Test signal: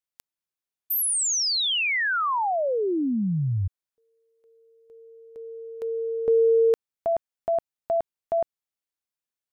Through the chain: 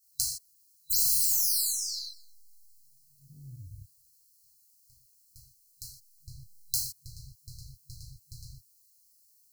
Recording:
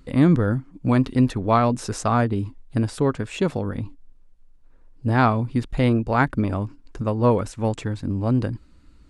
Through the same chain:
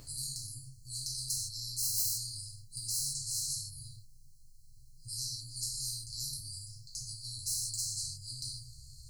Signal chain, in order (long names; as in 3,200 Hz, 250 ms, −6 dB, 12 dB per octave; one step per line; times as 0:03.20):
stylus tracing distortion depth 0.024 ms
brick-wall band-stop 150–4,000 Hz
high-shelf EQ 5,700 Hz +9.5 dB
reverb whose tail is shaped and stops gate 190 ms falling, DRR −7.5 dB
every bin compressed towards the loudest bin 10 to 1
level −4.5 dB